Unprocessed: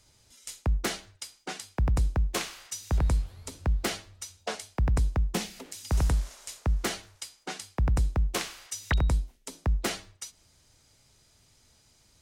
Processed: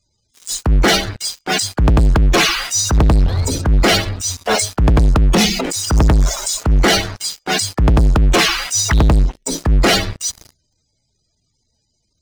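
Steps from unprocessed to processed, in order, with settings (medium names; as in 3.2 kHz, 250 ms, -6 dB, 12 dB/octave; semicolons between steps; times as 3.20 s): loudest bins only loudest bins 64; transient shaper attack -12 dB, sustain +6 dB; waveshaping leveller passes 5; trim +7.5 dB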